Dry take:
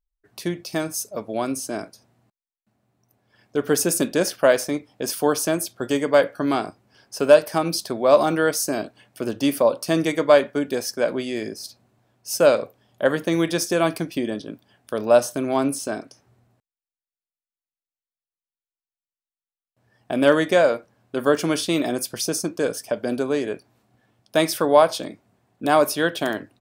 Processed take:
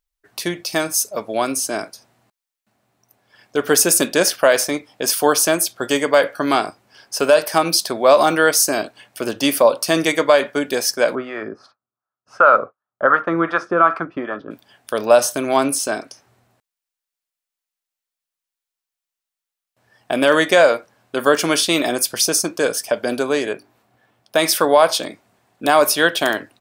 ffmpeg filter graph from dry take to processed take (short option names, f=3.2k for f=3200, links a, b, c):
-filter_complex "[0:a]asettb=1/sr,asplit=3[a][b][c];[a]atrim=end=11.154[d];[b]atrim=start=11.15:end=14.51,asetpts=PTS-STARTPTS,afade=t=in:d=0.004:c=qsin,afade=t=out:st=3.356:d=0.004:c=qsin,agate=range=-33dB:threshold=-39dB:ratio=3:release=100:detection=peak,lowpass=f=1.3k:t=q:w=8.7,acrossover=split=540[e][f];[e]aeval=exprs='val(0)*(1-0.7/2+0.7/2*cos(2*PI*2.7*n/s))':c=same[g];[f]aeval=exprs='val(0)*(1-0.7/2-0.7/2*cos(2*PI*2.7*n/s))':c=same[h];[g][h]amix=inputs=2:normalize=0[i];[c]atrim=start=14.506[j];[d][i]acrossfade=d=0.004:c1=hsin:c2=qsin[k];[k][j]acrossfade=d=0.004:c1=qsin:c2=hsin,asettb=1/sr,asplit=3[l][m][n];[l]atrim=end=23.534[o];[m]atrim=start=23.53:end=24.38,asetpts=PTS-STARTPTS,afade=t=in:d=0.004:c=qsin,afade=t=out:st=0.846:d=0.004:c=qsin,equalizer=f=7.1k:w=0.37:g=-6.5,bandreject=f=50:t=h:w=6,bandreject=f=100:t=h:w=6,bandreject=f=150:t=h:w=6,bandreject=f=200:t=h:w=6,bandreject=f=250:t=h:w=6,bandreject=f=300:t=h:w=6,bandreject=f=350:t=h:w=6,bandreject=f=400:t=h:w=6[p];[n]atrim=start=24.376[q];[o][p]acrossfade=d=0.004:c1=hsin:c2=qsin[r];[r][q]acrossfade=d=0.004:c1=qsin:c2=hsin,lowshelf=f=430:g=-12,alimiter=level_in=10.5dB:limit=-1dB:release=50:level=0:latency=1,volume=-1dB"